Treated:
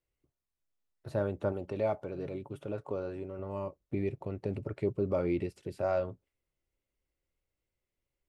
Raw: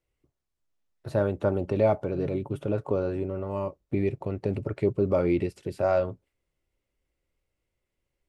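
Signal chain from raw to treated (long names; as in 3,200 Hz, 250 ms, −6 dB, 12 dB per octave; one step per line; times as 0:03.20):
0:01.52–0:03.39: low-shelf EQ 400 Hz −5.5 dB
level −6.5 dB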